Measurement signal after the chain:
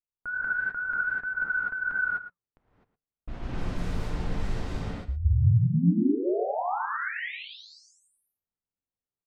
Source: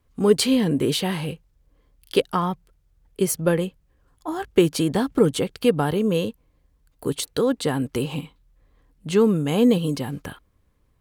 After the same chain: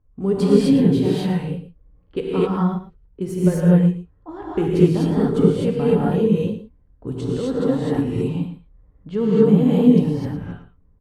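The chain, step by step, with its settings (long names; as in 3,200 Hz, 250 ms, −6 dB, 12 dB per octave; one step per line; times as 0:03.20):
flanger 1.7 Hz, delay 1.1 ms, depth 2.2 ms, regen −89%
spectral tilt −3 dB per octave
tape wow and flutter 77 cents
low-pass that shuts in the quiet parts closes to 1,400 Hz, open at −20 dBFS
on a send: single-tap delay 113 ms −13 dB
on the sum: reverb whose tail is shaped and stops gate 280 ms rising, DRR −7 dB
level −5.5 dB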